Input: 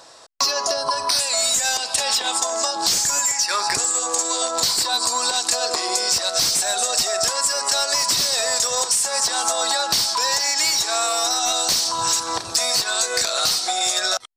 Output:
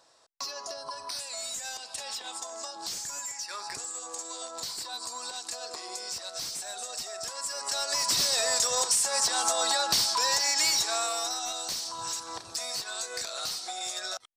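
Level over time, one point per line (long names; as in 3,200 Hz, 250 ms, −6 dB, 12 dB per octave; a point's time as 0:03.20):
0:07.23 −16.5 dB
0:08.23 −5.5 dB
0:10.75 −5.5 dB
0:11.57 −14 dB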